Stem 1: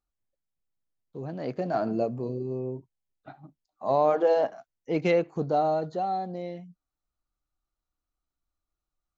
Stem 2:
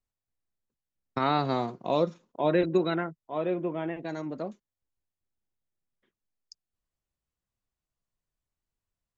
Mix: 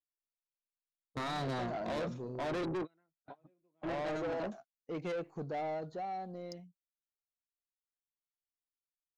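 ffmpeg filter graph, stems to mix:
ffmpeg -i stem1.wav -i stem2.wav -filter_complex "[0:a]agate=range=-22dB:threshold=-45dB:ratio=16:detection=peak,volume=-8.5dB,asplit=2[link_01][link_02];[1:a]alimiter=limit=-18.5dB:level=0:latency=1:release=12,volume=0.5dB[link_03];[link_02]apad=whole_len=404826[link_04];[link_03][link_04]sidechaingate=range=-46dB:threshold=-50dB:ratio=16:detection=peak[link_05];[link_01][link_05]amix=inputs=2:normalize=0,asoftclip=type=tanh:threshold=-33.5dB" out.wav

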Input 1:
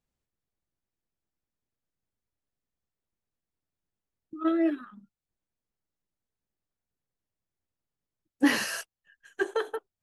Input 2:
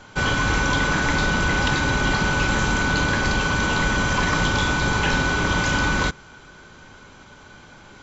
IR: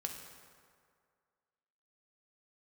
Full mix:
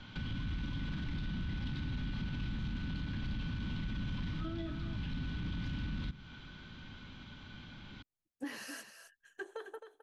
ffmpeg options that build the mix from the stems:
-filter_complex "[0:a]acompressor=threshold=-36dB:ratio=2.5,volume=-8dB,asplit=3[link_01][link_02][link_03];[link_02]volume=-9.5dB[link_04];[1:a]asoftclip=type=tanh:threshold=-23dB,firequalizer=gain_entry='entry(250,0);entry(410,-14);entry(3400,1);entry(7200,-24)':delay=0.05:min_phase=1,acrossover=split=290[link_05][link_06];[link_06]acompressor=threshold=-45dB:ratio=3[link_07];[link_05][link_07]amix=inputs=2:normalize=0,volume=-1dB[link_08];[link_03]apad=whole_len=358231[link_09];[link_08][link_09]sidechaincompress=threshold=-48dB:ratio=4:attack=16:release=1190[link_10];[link_04]aecho=0:1:264:1[link_11];[link_01][link_10][link_11]amix=inputs=3:normalize=0,alimiter=level_in=7dB:limit=-24dB:level=0:latency=1:release=41,volume=-7dB"

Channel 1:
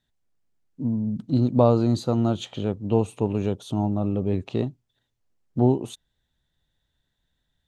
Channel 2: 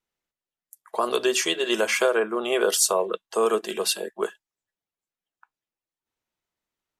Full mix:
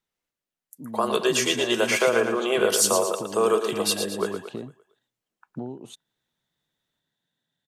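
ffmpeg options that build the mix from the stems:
ffmpeg -i stem1.wav -i stem2.wav -filter_complex "[0:a]highpass=frequency=140:width=0.5412,highpass=frequency=140:width=1.3066,acompressor=threshold=-28dB:ratio=12,volume=-2.5dB,afade=type=in:start_time=0.6:duration=0.6:silence=0.298538[link_01];[1:a]volume=0dB,asplit=2[link_02][link_03];[link_03]volume=-7.5dB,aecho=0:1:114|228|342|456|570|684:1|0.46|0.212|0.0973|0.0448|0.0206[link_04];[link_01][link_02][link_04]amix=inputs=3:normalize=0" out.wav

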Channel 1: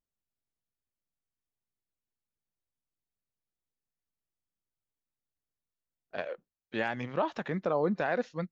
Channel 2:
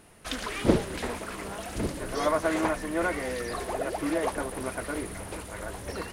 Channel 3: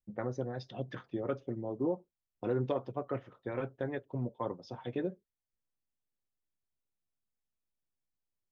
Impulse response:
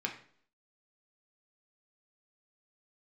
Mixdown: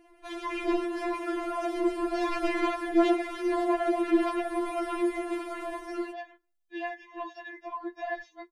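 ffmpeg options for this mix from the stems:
-filter_complex "[0:a]aecho=1:1:4:0.99,bandreject=frequency=124.8:width_type=h:width=4,bandreject=frequency=249.6:width_type=h:width=4,bandreject=frequency=374.4:width_type=h:width=4,bandreject=frequency=499.2:width_type=h:width=4,bandreject=frequency=624:width_type=h:width=4,bandreject=frequency=748.8:width_type=h:width=4,bandreject=frequency=873.6:width_type=h:width=4,bandreject=frequency=998.4:width_type=h:width=4,bandreject=frequency=1123.2:width_type=h:width=4,bandreject=frequency=1248:width_type=h:width=4,volume=-4.5dB,asplit=2[link_01][link_02];[link_02]volume=-23.5dB[link_03];[1:a]lowpass=frequency=1100:poles=1,dynaudnorm=framelen=110:gausssize=9:maxgain=8dB,volume=-1dB,asplit=2[link_04][link_05];[link_05]volume=-5dB[link_06];[2:a]adelay=150,volume=-1.5dB[link_07];[3:a]atrim=start_sample=2205[link_08];[link_03][link_06]amix=inputs=2:normalize=0[link_09];[link_09][link_08]afir=irnorm=-1:irlink=0[link_10];[link_01][link_04][link_07][link_10]amix=inputs=4:normalize=0,asoftclip=type=tanh:threshold=-19.5dB,afftfilt=real='re*4*eq(mod(b,16),0)':imag='im*4*eq(mod(b,16),0)':win_size=2048:overlap=0.75"

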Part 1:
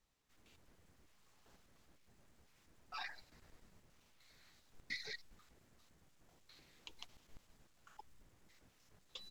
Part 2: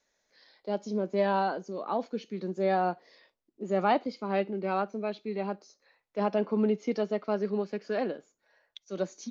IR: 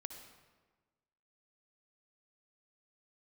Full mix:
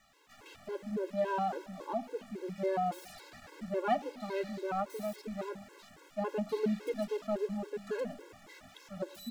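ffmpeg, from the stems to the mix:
-filter_complex "[0:a]highshelf=frequency=7200:gain=10,asplit=2[link_01][link_02];[link_02]highpass=frequency=720:poles=1,volume=22dB,asoftclip=type=tanh:threshold=-27.5dB[link_03];[link_01][link_03]amix=inputs=2:normalize=0,lowpass=frequency=2000:poles=1,volume=-6dB,aeval=exprs='0.0316*sin(PI/2*8.91*val(0)/0.0316)':channel_layout=same,volume=-13.5dB[link_04];[1:a]bandreject=frequency=50.16:width_type=h:width=4,bandreject=frequency=100.32:width_type=h:width=4,bandreject=frequency=150.48:width_type=h:width=4,bandreject=frequency=200.64:width_type=h:width=4,bandreject=frequency=250.8:width_type=h:width=4,bandreject=frequency=300.96:width_type=h:width=4,bandreject=frequency=351.12:width_type=h:width=4,adynamicsmooth=sensitivity=8:basefreq=2300,adynamicequalizer=threshold=0.00562:dfrequency=2200:dqfactor=0.7:tfrequency=2200:tqfactor=0.7:attack=5:release=100:ratio=0.375:range=2.5:mode=cutabove:tftype=highshelf,volume=-4dB,asplit=2[link_05][link_06];[link_06]volume=-8dB[link_07];[2:a]atrim=start_sample=2205[link_08];[link_07][link_08]afir=irnorm=-1:irlink=0[link_09];[link_04][link_05][link_09]amix=inputs=3:normalize=0,highshelf=frequency=4400:gain=-4.5,afftfilt=real='re*gt(sin(2*PI*3.6*pts/sr)*(1-2*mod(floor(b*sr/1024/280),2)),0)':imag='im*gt(sin(2*PI*3.6*pts/sr)*(1-2*mod(floor(b*sr/1024/280),2)),0)':win_size=1024:overlap=0.75"

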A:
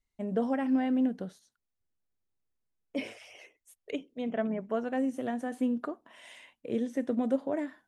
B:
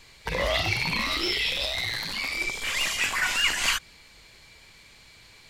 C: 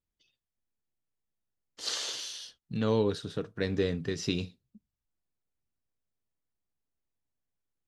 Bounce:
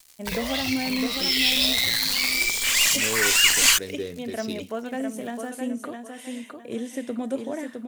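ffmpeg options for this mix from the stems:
ffmpeg -i stem1.wav -i stem2.wav -i stem3.wav -filter_complex "[0:a]volume=-0.5dB,asplit=3[link_01][link_02][link_03];[link_02]volume=-5.5dB[link_04];[1:a]equalizer=frequency=11000:width=4.7:gain=-5,acrusher=bits=6:mix=0:aa=0.5,volume=-0.5dB[link_05];[2:a]adynamicsmooth=sensitivity=7:basefreq=4600,equalizer=frequency=390:width_type=o:width=1.1:gain=8,adelay=200,volume=-10dB[link_06];[link_03]apad=whole_len=242416[link_07];[link_05][link_07]sidechaincompress=threshold=-36dB:ratio=4:attack=30:release=446[link_08];[link_04]aecho=0:1:660|1320|1980|2640:1|0.29|0.0841|0.0244[link_09];[link_01][link_08][link_06][link_09]amix=inputs=4:normalize=0,crystalizer=i=4:c=0" out.wav

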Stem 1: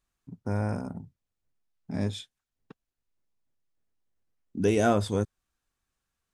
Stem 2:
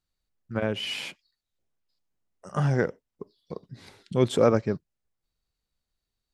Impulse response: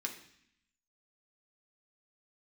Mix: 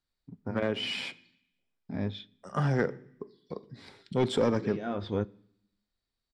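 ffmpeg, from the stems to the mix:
-filter_complex "[0:a]lowpass=frequency=4000:width=0.5412,lowpass=frequency=4000:width=1.3066,agate=range=-33dB:threshold=-53dB:ratio=3:detection=peak,volume=-3dB,asplit=2[link_01][link_02];[link_02]volume=-15dB[link_03];[1:a]equalizer=frequency=6300:width=7.5:gain=-8.5,acrossover=split=370|3000[link_04][link_05][link_06];[link_05]acompressor=threshold=-25dB:ratio=6[link_07];[link_04][link_07][link_06]amix=inputs=3:normalize=0,asoftclip=type=hard:threshold=-16.5dB,volume=-2.5dB,asplit=3[link_08][link_09][link_10];[link_09]volume=-8.5dB[link_11];[link_10]apad=whole_len=283636[link_12];[link_01][link_12]sidechaincompress=threshold=-49dB:ratio=4:attack=9.9:release=221[link_13];[2:a]atrim=start_sample=2205[link_14];[link_03][link_11]amix=inputs=2:normalize=0[link_15];[link_15][link_14]afir=irnorm=-1:irlink=0[link_16];[link_13][link_08][link_16]amix=inputs=3:normalize=0,lowpass=6800,bandreject=frequency=2700:width=14"

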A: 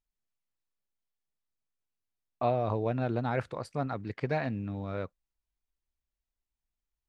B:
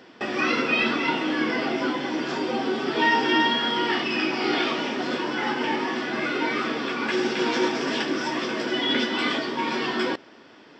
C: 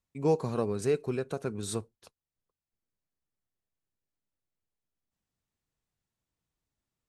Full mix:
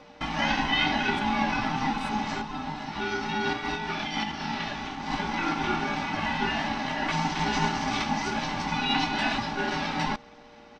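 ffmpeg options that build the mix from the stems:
ffmpeg -i stem1.wav -i stem2.wav -i stem3.wav -filter_complex "[0:a]acompressor=threshold=-34dB:ratio=6,volume=-13dB,asplit=2[link_01][link_02];[1:a]aeval=exprs='val(0)+0.00282*(sin(2*PI*60*n/s)+sin(2*PI*2*60*n/s)/2+sin(2*PI*3*60*n/s)/3+sin(2*PI*4*60*n/s)/4+sin(2*PI*5*60*n/s)/5)':channel_layout=same,aecho=1:1:3.5:0.77,volume=-2dB[link_03];[2:a]adelay=350,volume=-13dB[link_04];[link_02]apad=whole_len=476209[link_05];[link_03][link_05]sidechaincompress=threshold=-56dB:ratio=4:attack=45:release=139[link_06];[link_01][link_06][link_04]amix=inputs=3:normalize=0,aeval=exprs='val(0)*sin(2*PI*530*n/s)':channel_layout=same" out.wav

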